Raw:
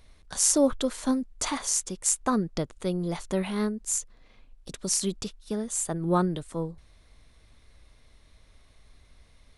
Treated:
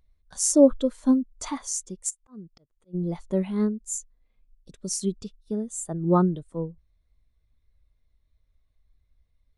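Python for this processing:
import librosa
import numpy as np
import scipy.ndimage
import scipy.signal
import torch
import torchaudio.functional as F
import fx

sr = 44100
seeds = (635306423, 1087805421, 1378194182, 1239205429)

y = fx.auto_swell(x, sr, attack_ms=523.0, at=(2.09, 2.93), fade=0.02)
y = fx.spectral_expand(y, sr, expansion=1.5)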